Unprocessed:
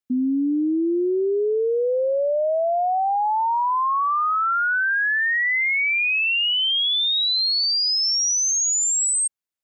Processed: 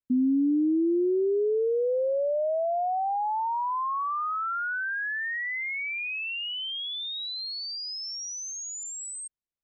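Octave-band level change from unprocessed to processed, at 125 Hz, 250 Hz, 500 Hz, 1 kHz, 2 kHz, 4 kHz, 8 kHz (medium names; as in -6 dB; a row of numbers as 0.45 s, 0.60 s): no reading, -2.5 dB, -4.5 dB, -7.5 dB, -10.5 dB, -13.0 dB, -16.0 dB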